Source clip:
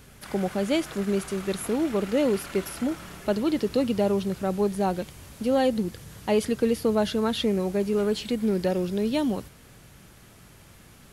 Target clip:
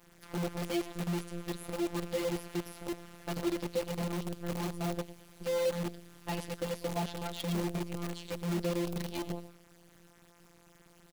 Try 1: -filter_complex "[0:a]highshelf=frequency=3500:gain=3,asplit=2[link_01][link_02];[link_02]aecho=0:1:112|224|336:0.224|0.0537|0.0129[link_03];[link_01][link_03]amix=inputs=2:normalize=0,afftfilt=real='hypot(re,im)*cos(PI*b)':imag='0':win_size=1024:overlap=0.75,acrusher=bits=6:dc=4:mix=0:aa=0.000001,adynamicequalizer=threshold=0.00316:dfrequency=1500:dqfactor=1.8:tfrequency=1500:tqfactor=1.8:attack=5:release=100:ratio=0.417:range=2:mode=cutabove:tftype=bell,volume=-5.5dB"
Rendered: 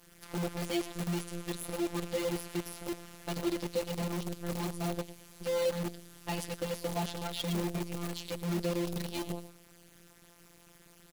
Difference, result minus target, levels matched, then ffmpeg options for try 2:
8,000 Hz band +2.5 dB
-filter_complex "[0:a]highshelf=frequency=3500:gain=-5,asplit=2[link_01][link_02];[link_02]aecho=0:1:112|224|336:0.224|0.0537|0.0129[link_03];[link_01][link_03]amix=inputs=2:normalize=0,afftfilt=real='hypot(re,im)*cos(PI*b)':imag='0':win_size=1024:overlap=0.75,acrusher=bits=6:dc=4:mix=0:aa=0.000001,adynamicequalizer=threshold=0.00316:dfrequency=1500:dqfactor=1.8:tfrequency=1500:tqfactor=1.8:attack=5:release=100:ratio=0.417:range=2:mode=cutabove:tftype=bell,volume=-5.5dB"

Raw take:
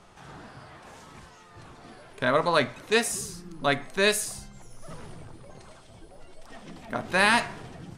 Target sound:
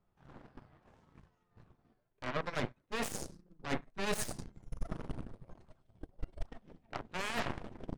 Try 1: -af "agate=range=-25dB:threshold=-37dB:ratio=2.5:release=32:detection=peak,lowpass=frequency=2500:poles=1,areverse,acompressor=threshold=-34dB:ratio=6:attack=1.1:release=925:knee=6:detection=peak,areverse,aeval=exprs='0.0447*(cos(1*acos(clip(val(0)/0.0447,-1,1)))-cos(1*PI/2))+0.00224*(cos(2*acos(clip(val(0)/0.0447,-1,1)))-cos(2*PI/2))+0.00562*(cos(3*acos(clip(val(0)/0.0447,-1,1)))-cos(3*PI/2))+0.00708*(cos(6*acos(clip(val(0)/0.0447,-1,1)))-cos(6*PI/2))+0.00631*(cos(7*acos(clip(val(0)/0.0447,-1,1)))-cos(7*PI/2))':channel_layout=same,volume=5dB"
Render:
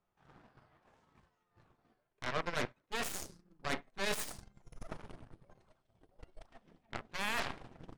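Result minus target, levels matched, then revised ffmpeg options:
250 Hz band −5.5 dB
-af "agate=range=-25dB:threshold=-37dB:ratio=2.5:release=32:detection=peak,lowpass=frequency=2500:poles=1,lowshelf=frequency=330:gain=10.5,areverse,acompressor=threshold=-34dB:ratio=6:attack=1.1:release=925:knee=6:detection=peak,areverse,aeval=exprs='0.0447*(cos(1*acos(clip(val(0)/0.0447,-1,1)))-cos(1*PI/2))+0.00224*(cos(2*acos(clip(val(0)/0.0447,-1,1)))-cos(2*PI/2))+0.00562*(cos(3*acos(clip(val(0)/0.0447,-1,1)))-cos(3*PI/2))+0.00708*(cos(6*acos(clip(val(0)/0.0447,-1,1)))-cos(6*PI/2))+0.00631*(cos(7*acos(clip(val(0)/0.0447,-1,1)))-cos(7*PI/2))':channel_layout=same,volume=5dB"

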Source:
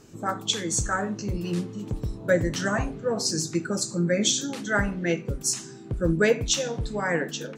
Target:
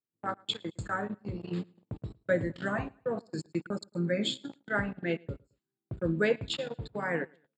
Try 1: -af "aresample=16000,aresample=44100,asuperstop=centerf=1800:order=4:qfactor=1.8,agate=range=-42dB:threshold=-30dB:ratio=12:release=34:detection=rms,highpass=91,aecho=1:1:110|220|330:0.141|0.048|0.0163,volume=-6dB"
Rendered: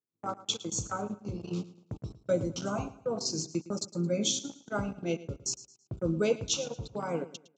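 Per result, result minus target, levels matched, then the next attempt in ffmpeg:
8,000 Hz band +17.0 dB; echo-to-direct +9.5 dB
-af "aresample=16000,aresample=44100,asuperstop=centerf=6000:order=4:qfactor=1.8,agate=range=-42dB:threshold=-30dB:ratio=12:release=34:detection=rms,highpass=91,aecho=1:1:110|220|330:0.141|0.048|0.0163,volume=-6dB"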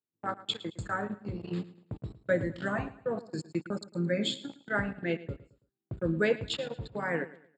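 echo-to-direct +9.5 dB
-af "aresample=16000,aresample=44100,asuperstop=centerf=6000:order=4:qfactor=1.8,agate=range=-42dB:threshold=-30dB:ratio=12:release=34:detection=rms,highpass=91,aecho=1:1:110|220:0.0473|0.0161,volume=-6dB"

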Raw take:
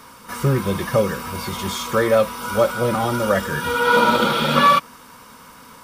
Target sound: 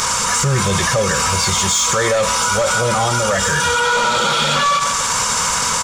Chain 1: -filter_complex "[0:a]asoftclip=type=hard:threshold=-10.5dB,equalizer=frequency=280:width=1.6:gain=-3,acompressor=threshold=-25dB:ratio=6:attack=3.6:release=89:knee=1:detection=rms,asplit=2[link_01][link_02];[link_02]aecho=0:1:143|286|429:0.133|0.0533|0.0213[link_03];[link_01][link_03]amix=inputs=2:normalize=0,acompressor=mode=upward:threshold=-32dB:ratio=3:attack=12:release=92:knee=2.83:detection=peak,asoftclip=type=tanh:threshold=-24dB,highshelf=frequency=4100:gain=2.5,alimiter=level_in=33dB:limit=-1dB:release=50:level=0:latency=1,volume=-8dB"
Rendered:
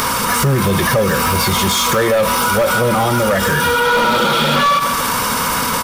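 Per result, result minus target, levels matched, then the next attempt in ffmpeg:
8,000 Hz band −6.5 dB; 250 Hz band +6.0 dB; soft clipping: distortion +6 dB
-filter_complex "[0:a]asoftclip=type=hard:threshold=-10.5dB,equalizer=frequency=280:width=1.6:gain=-3,acompressor=threshold=-25dB:ratio=6:attack=3.6:release=89:knee=1:detection=rms,lowpass=frequency=7100:width_type=q:width=5,asplit=2[link_01][link_02];[link_02]aecho=0:1:143|286|429:0.133|0.0533|0.0213[link_03];[link_01][link_03]amix=inputs=2:normalize=0,acompressor=mode=upward:threshold=-32dB:ratio=3:attack=12:release=92:knee=2.83:detection=peak,asoftclip=type=tanh:threshold=-24dB,highshelf=frequency=4100:gain=2.5,alimiter=level_in=33dB:limit=-1dB:release=50:level=0:latency=1,volume=-8dB"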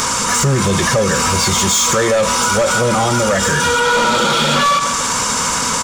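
soft clipping: distortion +8 dB; 250 Hz band +5.0 dB
-filter_complex "[0:a]asoftclip=type=hard:threshold=-10.5dB,equalizer=frequency=280:width=1.6:gain=-3,acompressor=threshold=-25dB:ratio=6:attack=3.6:release=89:knee=1:detection=rms,lowpass=frequency=7100:width_type=q:width=5,asplit=2[link_01][link_02];[link_02]aecho=0:1:143|286|429:0.133|0.0533|0.0213[link_03];[link_01][link_03]amix=inputs=2:normalize=0,acompressor=mode=upward:threshold=-32dB:ratio=3:attack=12:release=92:knee=2.83:detection=peak,asoftclip=type=tanh:threshold=-18dB,highshelf=frequency=4100:gain=2.5,alimiter=level_in=33dB:limit=-1dB:release=50:level=0:latency=1,volume=-8dB"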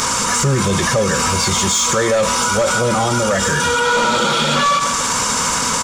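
250 Hz band +5.0 dB
-filter_complex "[0:a]asoftclip=type=hard:threshold=-10.5dB,equalizer=frequency=280:width=1.6:gain=-15,acompressor=threshold=-25dB:ratio=6:attack=3.6:release=89:knee=1:detection=rms,lowpass=frequency=7100:width_type=q:width=5,asplit=2[link_01][link_02];[link_02]aecho=0:1:143|286|429:0.133|0.0533|0.0213[link_03];[link_01][link_03]amix=inputs=2:normalize=0,acompressor=mode=upward:threshold=-32dB:ratio=3:attack=12:release=92:knee=2.83:detection=peak,asoftclip=type=tanh:threshold=-18dB,highshelf=frequency=4100:gain=2.5,alimiter=level_in=33dB:limit=-1dB:release=50:level=0:latency=1,volume=-8dB"

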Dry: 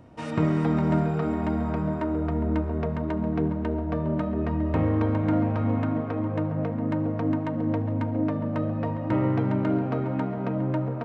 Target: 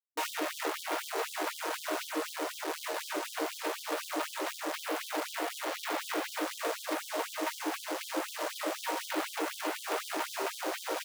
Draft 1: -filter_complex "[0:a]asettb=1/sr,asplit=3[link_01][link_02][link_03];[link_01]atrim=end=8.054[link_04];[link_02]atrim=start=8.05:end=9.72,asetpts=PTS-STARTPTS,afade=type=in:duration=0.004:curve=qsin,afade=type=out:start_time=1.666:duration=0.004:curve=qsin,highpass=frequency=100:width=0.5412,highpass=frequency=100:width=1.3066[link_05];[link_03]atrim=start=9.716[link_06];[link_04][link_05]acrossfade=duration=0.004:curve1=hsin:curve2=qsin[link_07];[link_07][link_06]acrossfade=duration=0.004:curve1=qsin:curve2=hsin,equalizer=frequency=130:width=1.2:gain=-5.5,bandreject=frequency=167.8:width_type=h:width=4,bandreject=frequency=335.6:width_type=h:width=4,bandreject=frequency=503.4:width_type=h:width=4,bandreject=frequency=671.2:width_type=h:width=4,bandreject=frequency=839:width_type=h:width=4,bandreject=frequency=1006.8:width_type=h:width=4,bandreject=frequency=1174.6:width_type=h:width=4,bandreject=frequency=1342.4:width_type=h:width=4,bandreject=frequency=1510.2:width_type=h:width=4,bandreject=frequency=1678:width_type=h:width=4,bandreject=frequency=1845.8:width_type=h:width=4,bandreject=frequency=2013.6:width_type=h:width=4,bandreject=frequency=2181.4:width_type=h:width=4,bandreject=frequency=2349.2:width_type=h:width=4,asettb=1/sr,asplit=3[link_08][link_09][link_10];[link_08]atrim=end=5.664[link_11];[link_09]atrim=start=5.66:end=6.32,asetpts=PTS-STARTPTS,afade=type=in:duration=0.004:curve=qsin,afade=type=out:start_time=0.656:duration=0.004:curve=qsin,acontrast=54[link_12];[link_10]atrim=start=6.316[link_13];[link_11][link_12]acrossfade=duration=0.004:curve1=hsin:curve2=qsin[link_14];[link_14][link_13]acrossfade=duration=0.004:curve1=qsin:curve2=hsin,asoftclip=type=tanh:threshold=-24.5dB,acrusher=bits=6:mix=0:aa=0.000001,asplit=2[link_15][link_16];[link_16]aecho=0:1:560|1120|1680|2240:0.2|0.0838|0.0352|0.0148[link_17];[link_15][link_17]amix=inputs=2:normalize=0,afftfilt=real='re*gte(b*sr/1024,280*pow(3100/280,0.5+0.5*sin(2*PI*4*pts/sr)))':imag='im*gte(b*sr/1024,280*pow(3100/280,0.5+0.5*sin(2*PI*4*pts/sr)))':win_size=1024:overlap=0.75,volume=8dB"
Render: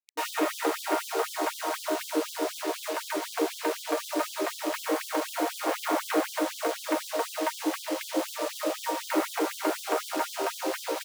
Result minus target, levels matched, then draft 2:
soft clipping: distortion −6 dB
-filter_complex "[0:a]asettb=1/sr,asplit=3[link_01][link_02][link_03];[link_01]atrim=end=8.054[link_04];[link_02]atrim=start=8.05:end=9.72,asetpts=PTS-STARTPTS,afade=type=in:duration=0.004:curve=qsin,afade=type=out:start_time=1.666:duration=0.004:curve=qsin,highpass=frequency=100:width=0.5412,highpass=frequency=100:width=1.3066[link_05];[link_03]atrim=start=9.716[link_06];[link_04][link_05]acrossfade=duration=0.004:curve1=hsin:curve2=qsin[link_07];[link_07][link_06]acrossfade=duration=0.004:curve1=qsin:curve2=hsin,equalizer=frequency=130:width=1.2:gain=-5.5,bandreject=frequency=167.8:width_type=h:width=4,bandreject=frequency=335.6:width_type=h:width=4,bandreject=frequency=503.4:width_type=h:width=4,bandreject=frequency=671.2:width_type=h:width=4,bandreject=frequency=839:width_type=h:width=4,bandreject=frequency=1006.8:width_type=h:width=4,bandreject=frequency=1174.6:width_type=h:width=4,bandreject=frequency=1342.4:width_type=h:width=4,bandreject=frequency=1510.2:width_type=h:width=4,bandreject=frequency=1678:width_type=h:width=4,bandreject=frequency=1845.8:width_type=h:width=4,bandreject=frequency=2013.6:width_type=h:width=4,bandreject=frequency=2181.4:width_type=h:width=4,bandreject=frequency=2349.2:width_type=h:width=4,asettb=1/sr,asplit=3[link_08][link_09][link_10];[link_08]atrim=end=5.664[link_11];[link_09]atrim=start=5.66:end=6.32,asetpts=PTS-STARTPTS,afade=type=in:duration=0.004:curve=qsin,afade=type=out:start_time=0.656:duration=0.004:curve=qsin,acontrast=54[link_12];[link_10]atrim=start=6.316[link_13];[link_11][link_12]acrossfade=duration=0.004:curve1=hsin:curve2=qsin[link_14];[link_14][link_13]acrossfade=duration=0.004:curve1=qsin:curve2=hsin,asoftclip=type=tanh:threshold=-33dB,acrusher=bits=6:mix=0:aa=0.000001,asplit=2[link_15][link_16];[link_16]aecho=0:1:560|1120|1680|2240:0.2|0.0838|0.0352|0.0148[link_17];[link_15][link_17]amix=inputs=2:normalize=0,afftfilt=real='re*gte(b*sr/1024,280*pow(3100/280,0.5+0.5*sin(2*PI*4*pts/sr)))':imag='im*gte(b*sr/1024,280*pow(3100/280,0.5+0.5*sin(2*PI*4*pts/sr)))':win_size=1024:overlap=0.75,volume=8dB"

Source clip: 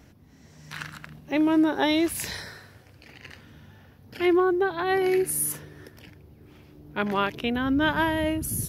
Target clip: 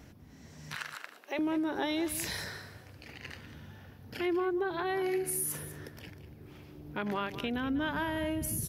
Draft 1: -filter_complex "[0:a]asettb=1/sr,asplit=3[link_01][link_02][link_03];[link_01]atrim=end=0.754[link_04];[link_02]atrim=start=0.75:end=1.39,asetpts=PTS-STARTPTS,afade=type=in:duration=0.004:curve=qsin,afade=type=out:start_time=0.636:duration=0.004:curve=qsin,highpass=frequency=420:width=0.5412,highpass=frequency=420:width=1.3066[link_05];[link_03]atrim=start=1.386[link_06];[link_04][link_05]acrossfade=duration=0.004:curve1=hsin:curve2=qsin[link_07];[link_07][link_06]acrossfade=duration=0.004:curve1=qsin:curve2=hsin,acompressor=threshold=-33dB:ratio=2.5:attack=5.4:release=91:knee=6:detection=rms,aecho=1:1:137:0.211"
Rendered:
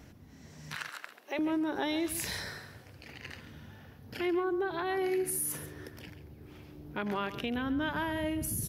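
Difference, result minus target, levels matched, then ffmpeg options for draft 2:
echo 58 ms early
-filter_complex "[0:a]asettb=1/sr,asplit=3[link_01][link_02][link_03];[link_01]atrim=end=0.754[link_04];[link_02]atrim=start=0.75:end=1.39,asetpts=PTS-STARTPTS,afade=type=in:duration=0.004:curve=qsin,afade=type=out:start_time=0.636:duration=0.004:curve=qsin,highpass=frequency=420:width=0.5412,highpass=frequency=420:width=1.3066[link_05];[link_03]atrim=start=1.386[link_06];[link_04][link_05]acrossfade=duration=0.004:curve1=hsin:curve2=qsin[link_07];[link_07][link_06]acrossfade=duration=0.004:curve1=qsin:curve2=hsin,acompressor=threshold=-33dB:ratio=2.5:attack=5.4:release=91:knee=6:detection=rms,aecho=1:1:195:0.211"

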